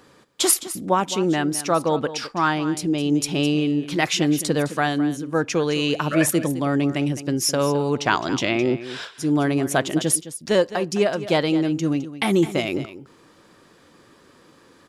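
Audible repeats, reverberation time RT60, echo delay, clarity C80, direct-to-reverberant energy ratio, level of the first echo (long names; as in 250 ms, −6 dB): 1, no reverb audible, 211 ms, no reverb audible, no reverb audible, −14.0 dB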